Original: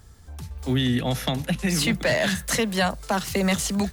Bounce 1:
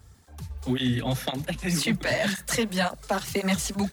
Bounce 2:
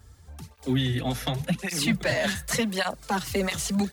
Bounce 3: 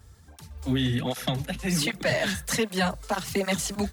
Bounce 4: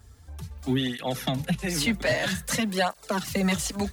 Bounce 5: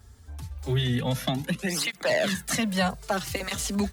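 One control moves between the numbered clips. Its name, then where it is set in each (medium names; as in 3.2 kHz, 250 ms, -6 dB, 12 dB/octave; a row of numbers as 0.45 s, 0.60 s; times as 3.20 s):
cancelling through-zero flanger, nulls at: 1.9 Hz, 0.88 Hz, 1.3 Hz, 0.51 Hz, 0.26 Hz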